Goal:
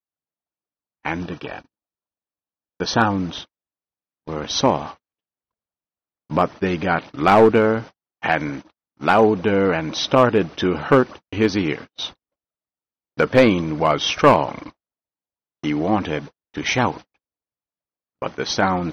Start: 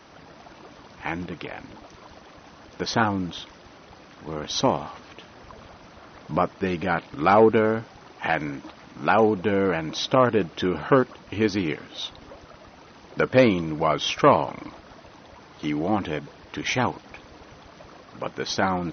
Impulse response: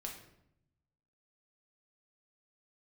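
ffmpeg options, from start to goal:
-filter_complex "[0:a]aeval=exprs='clip(val(0),-1,0.211)':channel_layout=same,asettb=1/sr,asplit=3[link_01][link_02][link_03];[link_01]atrim=end=1.204[link_04];[link_02]atrim=start=1.2:end=3.11,asetpts=PTS-STARTPTS,afade=type=in:duration=0.004:curve=qsin,afade=type=out:start_time=1.906:duration=0.004:curve=qsin,asuperstop=centerf=2100:order=12:qfactor=6.4[link_05];[link_03]atrim=start=3.106[link_06];[link_04][link_05]acrossfade=duration=0.004:curve1=hsin:curve2=qsin[link_07];[link_07][link_06]acrossfade=duration=0.004:curve1=qsin:curve2=hsin,agate=range=-57dB:threshold=-36dB:ratio=16:detection=peak,volume=4.5dB"

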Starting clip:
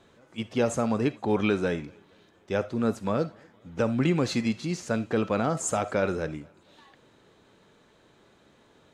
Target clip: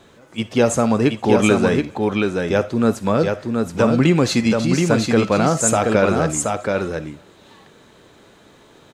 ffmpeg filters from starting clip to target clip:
ffmpeg -i in.wav -af "highshelf=frequency=8500:gain=7,aecho=1:1:726:0.631,volume=9dB" out.wav

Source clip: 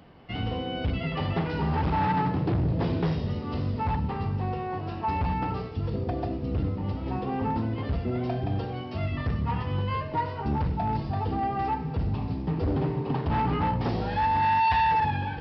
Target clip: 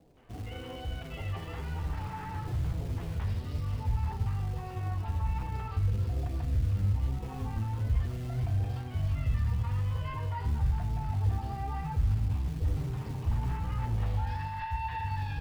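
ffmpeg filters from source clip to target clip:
ffmpeg -i in.wav -filter_complex "[0:a]acrossover=split=720|3800[link_01][link_02][link_03];[link_02]adelay=170[link_04];[link_03]adelay=460[link_05];[link_01][link_04][link_05]amix=inputs=3:normalize=0,acrossover=split=500[link_06][link_07];[link_06]acrusher=bits=4:mode=log:mix=0:aa=0.000001[link_08];[link_08][link_07]amix=inputs=2:normalize=0,alimiter=level_in=1.5dB:limit=-24dB:level=0:latency=1:release=52,volume=-1.5dB,equalizer=frequency=160:width=0.96:gain=-8,flanger=delay=5.9:depth=4.5:regen=61:speed=1.1:shape=triangular,asubboost=boost=9:cutoff=110" out.wav

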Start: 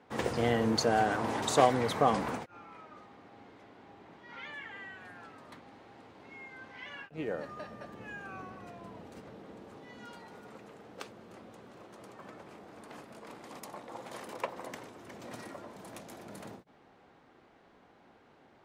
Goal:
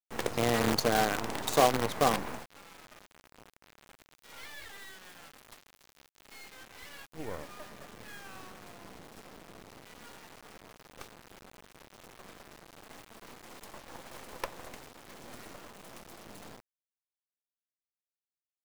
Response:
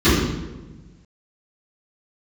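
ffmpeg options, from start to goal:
-filter_complex "[0:a]asettb=1/sr,asplit=3[link_01][link_02][link_03];[link_01]atrim=end=4.024[link_04];[link_02]atrim=start=4.02:end=6.44,asetpts=PTS-STARTPTS,afade=type=in:duration=0.004:curve=qsin,afade=type=out:start_time=2.416:duration=0.004:curve=qsin,aemphasis=mode=production:type=bsi[link_05];[link_03]atrim=start=6.436[link_06];[link_04][link_05]acrossfade=duration=0.004:curve1=hsin:curve2=qsin[link_07];[link_07][link_06]acrossfade=duration=0.004:curve1=qsin:curve2=hsin,acrusher=bits=5:dc=4:mix=0:aa=0.000001"

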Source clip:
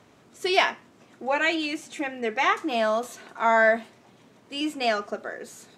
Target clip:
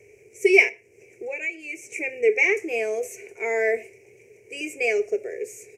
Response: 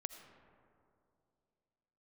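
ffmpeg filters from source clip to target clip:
-filter_complex "[0:a]firequalizer=gain_entry='entry(110,0);entry(170,-15);entry(270,-17);entry(410,13);entry(610,-8);entry(1200,-30);entry(2300,12);entry(3500,-29);entry(5800,2)':delay=0.05:min_phase=1,asplit=3[link_01][link_02][link_03];[link_01]afade=type=out:start_time=0.68:duration=0.02[link_04];[link_02]acompressor=threshold=-33dB:ratio=3,afade=type=in:start_time=0.68:duration=0.02,afade=type=out:start_time=1.93:duration=0.02[link_05];[link_03]afade=type=in:start_time=1.93:duration=0.02[link_06];[link_04][link_05][link_06]amix=inputs=3:normalize=0,asplit=2[link_07][link_08];[1:a]atrim=start_sample=2205,afade=type=out:start_time=0.18:duration=0.01,atrim=end_sample=8379[link_09];[link_08][link_09]afir=irnorm=-1:irlink=0,volume=-9.5dB[link_10];[link_07][link_10]amix=inputs=2:normalize=0"

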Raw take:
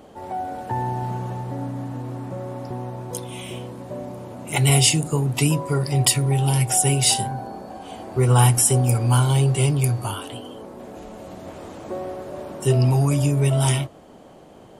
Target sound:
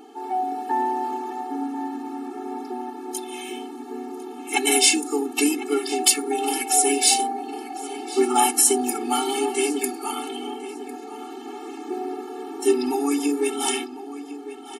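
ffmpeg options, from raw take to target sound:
ffmpeg -i in.wav -filter_complex "[0:a]asplit=2[link_01][link_02];[link_02]asetrate=33038,aresample=44100,atempo=1.33484,volume=-11dB[link_03];[link_01][link_03]amix=inputs=2:normalize=0,asplit=2[link_04][link_05];[link_05]adelay=1052,lowpass=frequency=3500:poles=1,volume=-13dB,asplit=2[link_06][link_07];[link_07]adelay=1052,lowpass=frequency=3500:poles=1,volume=0.5,asplit=2[link_08][link_09];[link_09]adelay=1052,lowpass=frequency=3500:poles=1,volume=0.5,asplit=2[link_10][link_11];[link_11]adelay=1052,lowpass=frequency=3500:poles=1,volume=0.5,asplit=2[link_12][link_13];[link_13]adelay=1052,lowpass=frequency=3500:poles=1,volume=0.5[link_14];[link_04][link_06][link_08][link_10][link_12][link_14]amix=inputs=6:normalize=0,afftfilt=real='re*eq(mod(floor(b*sr/1024/230),2),1)':imag='im*eq(mod(floor(b*sr/1024/230),2),1)':win_size=1024:overlap=0.75,volume=4dB" out.wav

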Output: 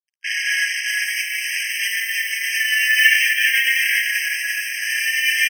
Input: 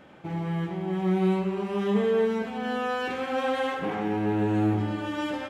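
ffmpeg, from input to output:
ffmpeg -i in.wav -filter_complex "[0:a]crystalizer=i=9.5:c=0,adynamicequalizer=threshold=0.0158:dfrequency=250:dqfactor=0.99:tfrequency=250:tqfactor=0.99:attack=5:release=100:ratio=0.375:range=3:mode=boostabove:tftype=bell,flanger=delay=17:depth=7.4:speed=0.54,aeval=exprs='0.266*(cos(1*acos(clip(val(0)/0.266,-1,1)))-cos(1*PI/2))+0.00422*(cos(4*acos(clip(val(0)/0.266,-1,1)))-cos(4*PI/2))+0.00422*(cos(7*acos(clip(val(0)/0.266,-1,1)))-cos(7*PI/2))':channel_layout=same,asplit=2[link_01][link_02];[link_02]asoftclip=type=hard:threshold=-29dB,volume=-9dB[link_03];[link_01][link_03]amix=inputs=2:normalize=0,asplit=4[link_04][link_05][link_06][link_07];[link_05]asetrate=29433,aresample=44100,atempo=1.49831,volume=-16dB[link_08];[link_06]asetrate=52444,aresample=44100,atempo=0.840896,volume=-13dB[link_09];[link_07]asetrate=66075,aresample=44100,atempo=0.66742,volume=-15dB[link_10];[link_04][link_08][link_09][link_10]amix=inputs=4:normalize=0,lowpass=1700,asplit=2[link_11][link_12];[link_12]aecho=0:1:392:0.531[link_13];[link_11][link_13]amix=inputs=2:normalize=0,acrusher=bits=5:mix=0:aa=0.5,alimiter=level_in=18.5dB:limit=-1dB:release=50:level=0:latency=1,afftfilt=real='re*eq(mod(floor(b*sr/1024/1600),2),1)':imag='im*eq(mod(floor(b*sr/1024/1600),2),1)':win_size=1024:overlap=0.75,volume=4dB" out.wav

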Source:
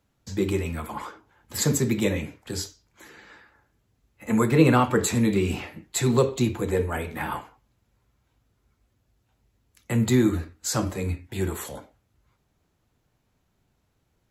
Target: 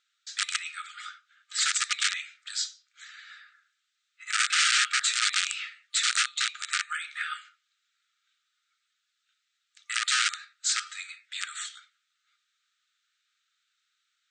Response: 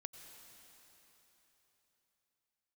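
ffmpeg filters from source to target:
-af "equalizer=frequency=3700:width=3.2:gain=8,aeval=exprs='(mod(6.68*val(0)+1,2)-1)/6.68':channel_layout=same,afftfilt=real='re*between(b*sr/4096,1200,9000)':imag='im*between(b*sr/4096,1200,9000)':win_size=4096:overlap=0.75,volume=1.5dB"

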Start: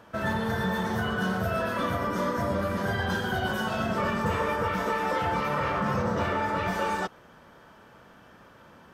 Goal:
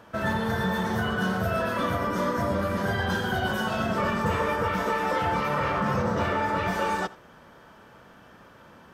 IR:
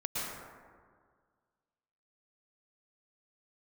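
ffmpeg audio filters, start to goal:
-filter_complex "[0:a]asplit=2[link_01][link_02];[1:a]atrim=start_sample=2205,atrim=end_sample=3528,adelay=83[link_03];[link_02][link_03]afir=irnorm=-1:irlink=0,volume=-18dB[link_04];[link_01][link_04]amix=inputs=2:normalize=0,volume=1.5dB"

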